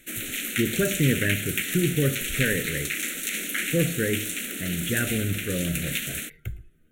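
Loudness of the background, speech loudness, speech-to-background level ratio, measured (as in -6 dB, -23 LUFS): -28.5 LUFS, -27.5 LUFS, 1.0 dB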